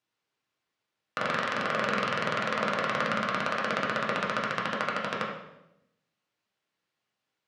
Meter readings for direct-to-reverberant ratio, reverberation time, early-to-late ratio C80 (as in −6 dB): −3.5 dB, 0.85 s, 6.0 dB